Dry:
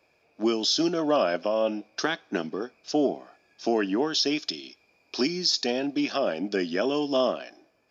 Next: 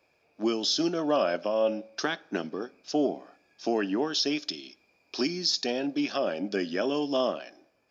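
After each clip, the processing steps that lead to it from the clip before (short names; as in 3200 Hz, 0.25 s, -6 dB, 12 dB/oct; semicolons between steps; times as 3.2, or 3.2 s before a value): reverb RT60 0.55 s, pre-delay 3 ms, DRR 19 dB; gain -2.5 dB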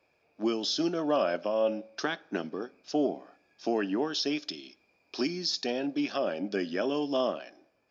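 high shelf 6700 Hz -8 dB; gain -1.5 dB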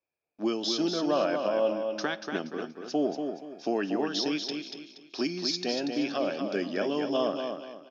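gate with hold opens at -57 dBFS; short-mantissa float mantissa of 8-bit; on a send: feedback echo 0.237 s, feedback 32%, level -6 dB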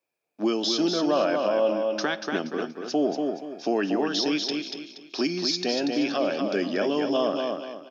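HPF 140 Hz; in parallel at 0 dB: limiter -24.5 dBFS, peak gain reduction 10 dB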